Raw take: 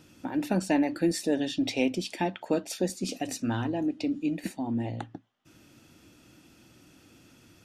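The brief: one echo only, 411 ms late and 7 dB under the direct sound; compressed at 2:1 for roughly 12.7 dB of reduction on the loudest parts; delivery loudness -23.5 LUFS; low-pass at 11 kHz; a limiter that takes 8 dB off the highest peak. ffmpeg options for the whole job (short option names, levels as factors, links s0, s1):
-af "lowpass=11000,acompressor=threshold=0.00562:ratio=2,alimiter=level_in=2.82:limit=0.0631:level=0:latency=1,volume=0.355,aecho=1:1:411:0.447,volume=8.91"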